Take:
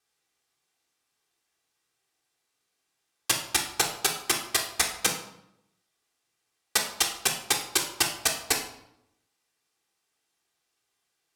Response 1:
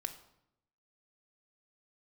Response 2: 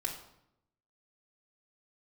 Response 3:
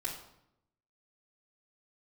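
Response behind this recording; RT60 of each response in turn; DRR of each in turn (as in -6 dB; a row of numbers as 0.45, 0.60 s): 2; 0.80, 0.80, 0.80 s; 4.5, -3.0, -8.0 dB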